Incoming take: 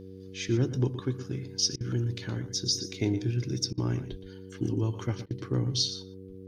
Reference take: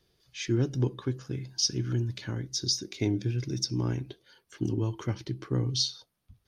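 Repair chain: de-hum 94.9 Hz, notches 5; de-plosive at 4.10 s; interpolate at 1.76/3.73/5.26 s, 45 ms; inverse comb 118 ms -12.5 dB

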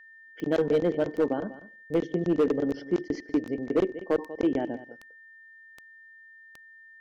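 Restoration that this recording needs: clip repair -17 dBFS; de-click; band-stop 1.8 kHz, Q 30; inverse comb 192 ms -16 dB

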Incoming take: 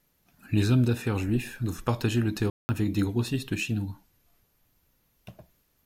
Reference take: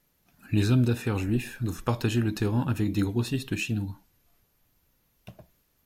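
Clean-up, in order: room tone fill 2.50–2.69 s

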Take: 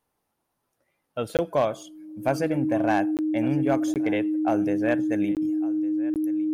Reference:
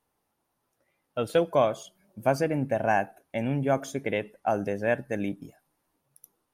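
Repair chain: clip repair -14 dBFS; band-stop 310 Hz, Q 30; interpolate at 1.37/3.17/3.94/5.35/6.14 s, 18 ms; inverse comb 1157 ms -20 dB

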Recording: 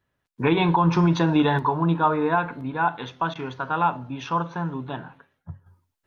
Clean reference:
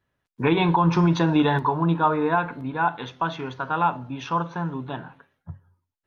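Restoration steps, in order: interpolate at 3.34 s, 13 ms; trim 0 dB, from 5.66 s -7.5 dB

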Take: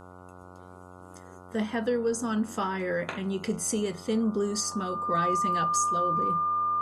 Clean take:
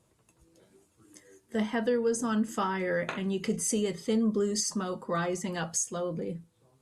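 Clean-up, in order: de-hum 90.8 Hz, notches 16; band-stop 1.2 kHz, Q 30

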